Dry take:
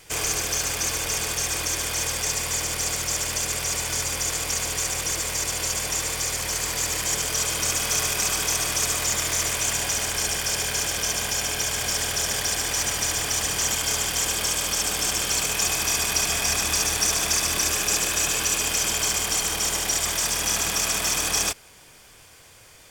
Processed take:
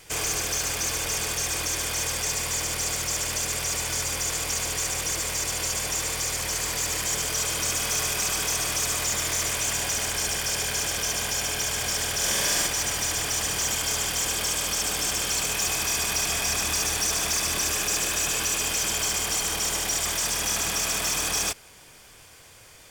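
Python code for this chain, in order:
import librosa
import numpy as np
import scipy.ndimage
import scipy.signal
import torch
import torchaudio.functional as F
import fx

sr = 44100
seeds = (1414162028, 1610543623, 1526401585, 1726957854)

y = 10.0 ** (-19.5 / 20.0) * np.tanh(x / 10.0 ** (-19.5 / 20.0))
y = fx.room_flutter(y, sr, wall_m=7.7, rt60_s=0.98, at=(12.17, 12.67))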